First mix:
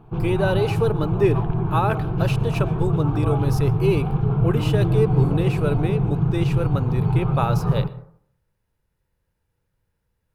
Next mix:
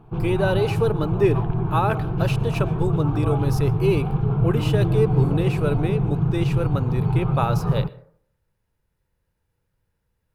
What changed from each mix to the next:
background: send -9.0 dB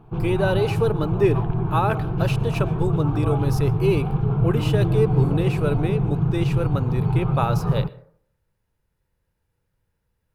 none

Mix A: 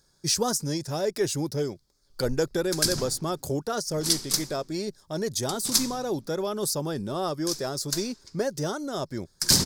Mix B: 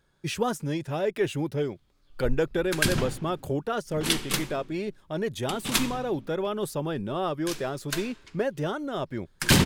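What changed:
background +7.5 dB; master: add resonant high shelf 3800 Hz -10 dB, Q 3

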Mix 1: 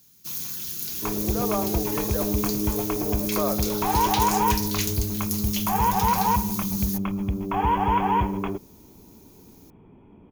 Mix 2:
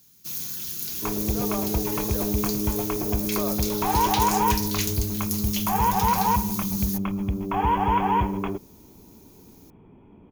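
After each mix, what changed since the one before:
speech -6.0 dB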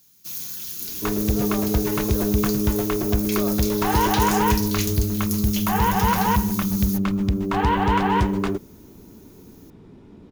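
second sound: remove rippled Chebyshev low-pass 3400 Hz, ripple 9 dB; master: add low shelf 360 Hz -4.5 dB

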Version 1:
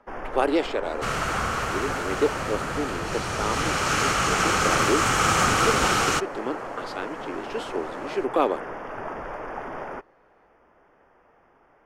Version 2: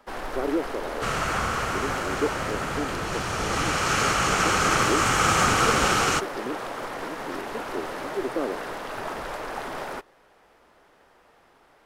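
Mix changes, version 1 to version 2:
speech: add running mean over 49 samples; first sound: remove running mean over 11 samples

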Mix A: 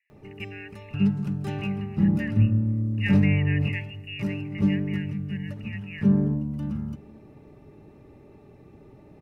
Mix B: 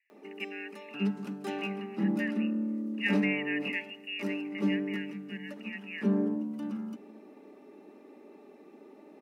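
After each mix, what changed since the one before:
background: add steep high-pass 220 Hz 48 dB/oct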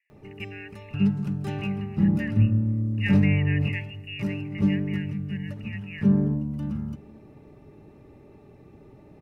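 background: remove steep high-pass 220 Hz 48 dB/oct

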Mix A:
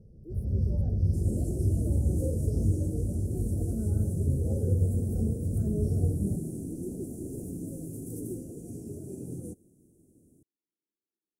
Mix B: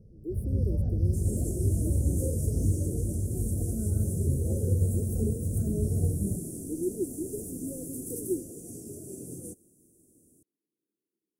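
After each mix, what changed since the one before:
speech +10.0 dB; second sound: add tone controls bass -6 dB, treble +9 dB; master: add bell 840 Hz -6 dB 0.27 oct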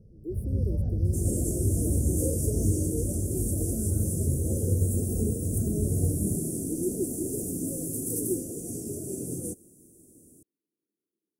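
second sound +7.0 dB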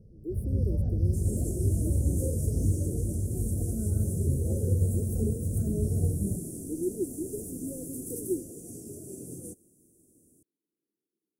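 second sound -7.5 dB

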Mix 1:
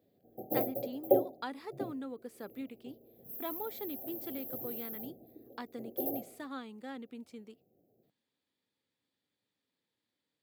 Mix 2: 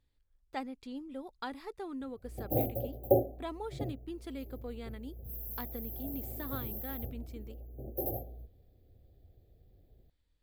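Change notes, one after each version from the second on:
background: entry +2.00 s; master: remove HPF 170 Hz 24 dB/oct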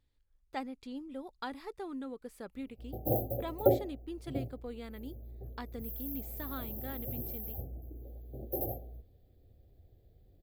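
background: entry +0.55 s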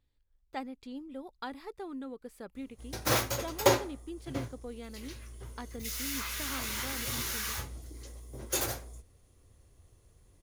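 background: remove brick-wall FIR band-stop 810–12000 Hz

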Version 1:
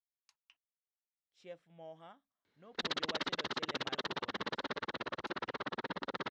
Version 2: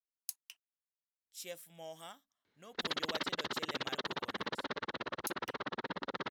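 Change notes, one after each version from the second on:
speech: remove tape spacing loss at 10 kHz 40 dB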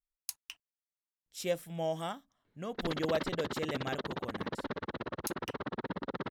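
speech +12.0 dB; master: add tilt -3 dB/oct

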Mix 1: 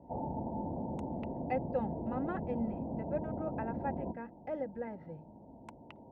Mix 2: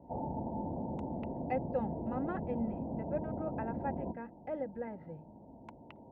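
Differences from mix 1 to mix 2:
speech: add air absorption 63 m; master: add air absorption 54 m

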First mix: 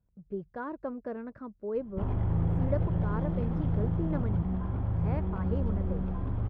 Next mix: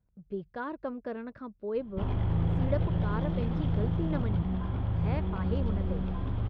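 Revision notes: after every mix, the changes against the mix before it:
master: add bell 3600 Hz +13 dB 1.3 oct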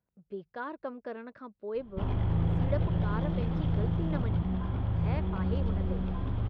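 speech: add HPF 380 Hz 6 dB/oct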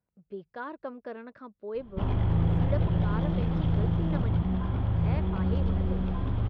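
background +3.0 dB

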